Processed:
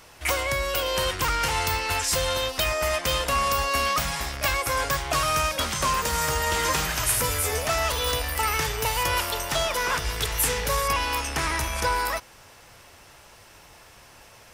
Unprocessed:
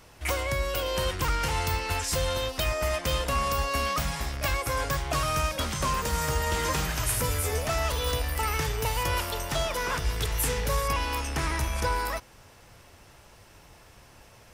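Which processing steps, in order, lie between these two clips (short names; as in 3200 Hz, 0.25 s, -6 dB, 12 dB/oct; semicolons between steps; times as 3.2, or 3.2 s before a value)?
low shelf 420 Hz -8 dB; gain +5.5 dB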